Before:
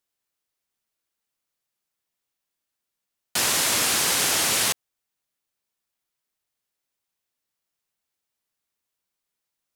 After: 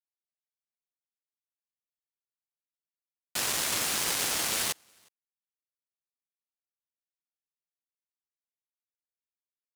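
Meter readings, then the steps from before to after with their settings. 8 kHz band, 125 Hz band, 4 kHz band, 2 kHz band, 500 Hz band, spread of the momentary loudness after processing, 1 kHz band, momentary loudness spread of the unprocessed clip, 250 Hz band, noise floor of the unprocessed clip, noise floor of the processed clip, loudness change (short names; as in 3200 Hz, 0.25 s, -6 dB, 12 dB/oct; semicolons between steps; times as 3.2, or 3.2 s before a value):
-7.5 dB, -7.0 dB, -7.5 dB, -7.5 dB, -7.5 dB, 6 LU, -7.5 dB, 6 LU, -7.5 dB, -84 dBFS, under -85 dBFS, -7.5 dB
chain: echo 0.361 s -16 dB; power-law curve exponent 2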